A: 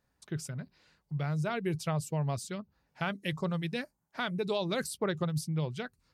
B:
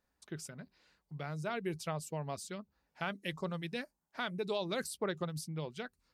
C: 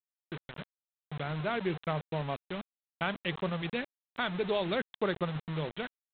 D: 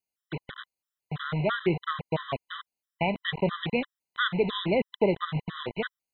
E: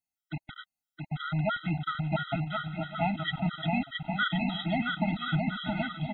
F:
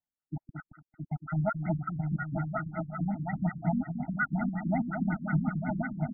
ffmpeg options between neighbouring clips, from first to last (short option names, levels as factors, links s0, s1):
-af "equalizer=f=120:t=o:w=0.6:g=-14,volume=0.668"
-af "dynaudnorm=f=330:g=3:m=1.58,aresample=8000,acrusher=bits=6:mix=0:aa=0.000001,aresample=44100,volume=1.12"
-af "afftfilt=real='re*gt(sin(2*PI*3*pts/sr)*(1-2*mod(floor(b*sr/1024/1000),2)),0)':imag='im*gt(sin(2*PI*3*pts/sr)*(1-2*mod(floor(b*sr/1024/1000),2)),0)':win_size=1024:overlap=0.75,volume=2.51"
-af "aecho=1:1:670|1072|1313|1458|1545:0.631|0.398|0.251|0.158|0.1,afftfilt=real='re*eq(mod(floor(b*sr/1024/310),2),0)':imag='im*eq(mod(floor(b*sr/1024/310),2),0)':win_size=1024:overlap=0.75"
-af "aecho=1:1:224|448|672:0.473|0.0852|0.0153,afftfilt=real='re*lt(b*sr/1024,290*pow(2200/290,0.5+0.5*sin(2*PI*5.5*pts/sr)))':imag='im*lt(b*sr/1024,290*pow(2200/290,0.5+0.5*sin(2*PI*5.5*pts/sr)))':win_size=1024:overlap=0.75"